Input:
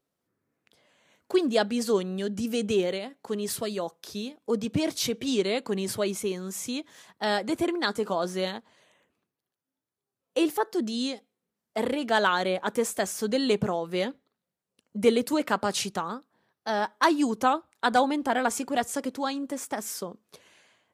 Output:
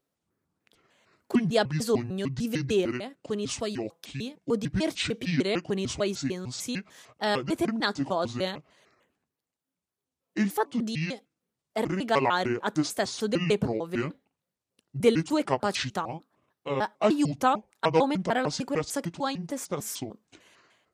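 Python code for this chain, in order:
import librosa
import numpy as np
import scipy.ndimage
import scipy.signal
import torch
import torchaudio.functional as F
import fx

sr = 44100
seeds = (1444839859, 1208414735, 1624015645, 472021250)

y = fx.pitch_trill(x, sr, semitones=-7.5, every_ms=150)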